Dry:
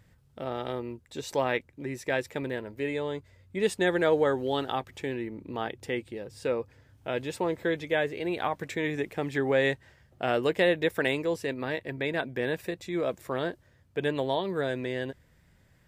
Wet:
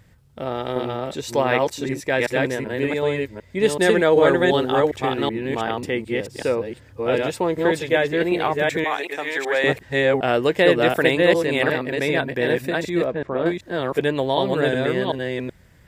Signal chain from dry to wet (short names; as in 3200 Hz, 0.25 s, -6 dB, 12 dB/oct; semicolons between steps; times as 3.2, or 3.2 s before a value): reverse delay 0.378 s, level -1 dB; 8.84–9.64 HPF 640 Hz 12 dB/oct; 13.04–13.46 tape spacing loss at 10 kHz 35 dB; gain +7 dB